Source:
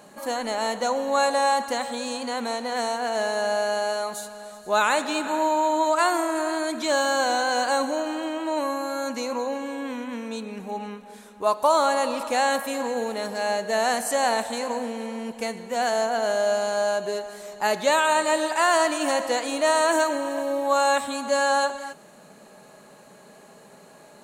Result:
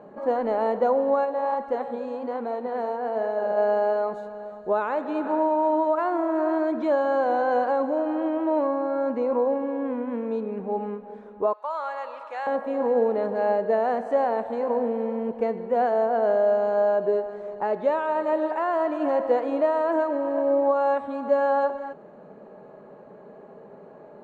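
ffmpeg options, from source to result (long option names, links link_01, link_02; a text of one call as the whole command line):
ffmpeg -i in.wav -filter_complex "[0:a]asplit=3[link_01][link_02][link_03];[link_01]afade=type=out:start_time=1.24:duration=0.02[link_04];[link_02]flanger=delay=1.3:depth=9.9:regen=69:speed=1.2:shape=sinusoidal,afade=type=in:start_time=1.24:duration=0.02,afade=type=out:start_time=3.56:duration=0.02[link_05];[link_03]afade=type=in:start_time=3.56:duration=0.02[link_06];[link_04][link_05][link_06]amix=inputs=3:normalize=0,asettb=1/sr,asplit=3[link_07][link_08][link_09];[link_07]atrim=end=8.674[link_10];[link_08]atrim=start=8.67:end=10.07,asetpts=PTS-STARTPTS,afade=type=in:duration=0.004:curve=qsin,afade=type=out:start_time=1.396:duration=0.004:curve=qsin,highshelf=frequency=4800:gain=-8.5[link_11];[link_09]atrim=start=10.066[link_12];[link_10][link_11]acrossfade=duration=0.004:curve1=hsin:curve2=qsin[link_13];[link_13][link_12]acrossfade=duration=0.004:curve1=qsin:curve2=hsin,asettb=1/sr,asplit=3[link_14][link_15][link_16];[link_14]atrim=end=11.534[link_17];[link_15]atrim=start=11.53:end=12.47,asetpts=PTS-STARTPTS,afade=type=in:duration=0.004:curve=qsin,afade=type=out:start_time=0.936:duration=0.004:curve=qsin,highpass=1400[link_18];[link_16]atrim=start=12.466[link_19];[link_17][link_18]acrossfade=duration=0.004:curve1=hsin:curve2=qsin[link_20];[link_20][link_19]acrossfade=duration=0.004:curve1=qsin:curve2=hsin,alimiter=limit=-15.5dB:level=0:latency=1:release=480,lowpass=1100,equalizer=frequency=440:width_type=o:width=0.85:gain=6.5,volume=1.5dB" out.wav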